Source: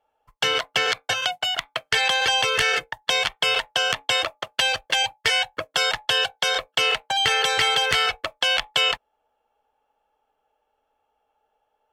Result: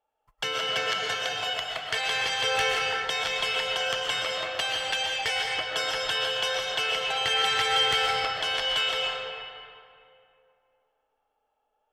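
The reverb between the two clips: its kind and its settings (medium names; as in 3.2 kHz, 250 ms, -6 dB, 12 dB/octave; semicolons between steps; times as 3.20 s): algorithmic reverb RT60 2.5 s, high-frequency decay 0.65×, pre-delay 85 ms, DRR -2 dB; trim -8.5 dB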